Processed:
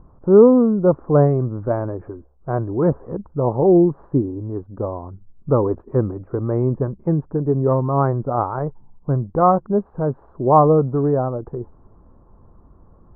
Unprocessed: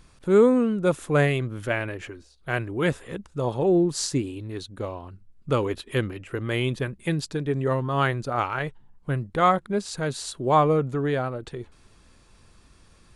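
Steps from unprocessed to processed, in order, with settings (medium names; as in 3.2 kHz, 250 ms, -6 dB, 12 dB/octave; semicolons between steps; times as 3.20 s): steep low-pass 1.1 kHz 36 dB/octave; trim +7 dB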